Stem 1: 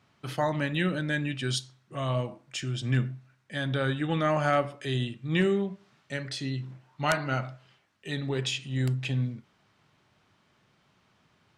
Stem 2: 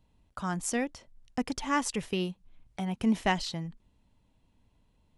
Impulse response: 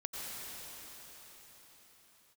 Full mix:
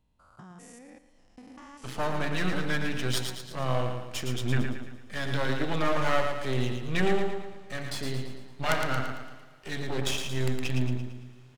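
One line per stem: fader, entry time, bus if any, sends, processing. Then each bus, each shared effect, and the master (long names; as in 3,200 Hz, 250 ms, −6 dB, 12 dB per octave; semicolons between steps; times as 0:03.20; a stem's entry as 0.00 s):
+0.5 dB, 1.60 s, send −22.5 dB, echo send −5 dB, automatic gain control gain up to 3 dB; half-wave rectification
−3.5 dB, 0.00 s, no send, echo send −13 dB, spectrum averaged block by block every 200 ms; downward compressor 4 to 1, threshold −44 dBFS, peak gain reduction 13.5 dB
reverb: on, pre-delay 83 ms
echo: repeating echo 113 ms, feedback 48%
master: no processing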